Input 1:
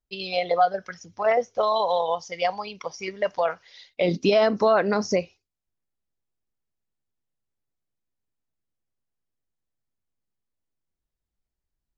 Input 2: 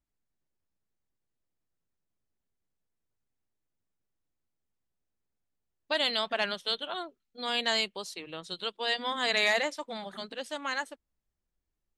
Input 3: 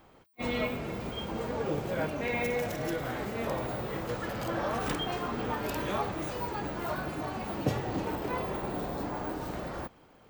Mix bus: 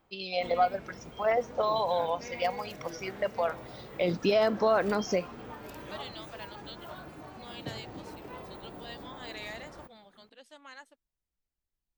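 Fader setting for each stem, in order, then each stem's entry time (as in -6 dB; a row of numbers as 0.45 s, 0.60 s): -5.5 dB, -16.0 dB, -11.0 dB; 0.00 s, 0.00 s, 0.00 s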